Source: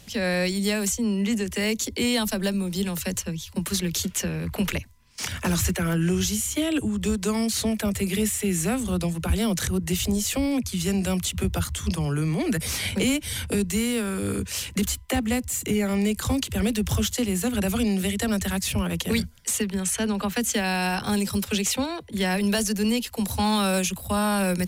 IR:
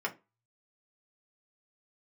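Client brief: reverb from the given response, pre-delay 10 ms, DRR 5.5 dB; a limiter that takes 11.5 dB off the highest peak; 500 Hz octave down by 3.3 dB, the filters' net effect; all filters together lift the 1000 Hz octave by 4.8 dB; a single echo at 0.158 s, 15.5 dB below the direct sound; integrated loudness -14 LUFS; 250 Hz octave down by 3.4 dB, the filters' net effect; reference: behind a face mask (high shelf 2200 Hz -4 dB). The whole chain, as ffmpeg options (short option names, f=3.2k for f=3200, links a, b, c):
-filter_complex "[0:a]equalizer=f=250:t=o:g=-4,equalizer=f=500:t=o:g=-5,equalizer=f=1k:t=o:g=9,alimiter=limit=-23dB:level=0:latency=1,aecho=1:1:158:0.168,asplit=2[a][b];[1:a]atrim=start_sample=2205,adelay=10[c];[b][c]afir=irnorm=-1:irlink=0,volume=-11dB[d];[a][d]amix=inputs=2:normalize=0,highshelf=f=2.2k:g=-4,volume=17.5dB"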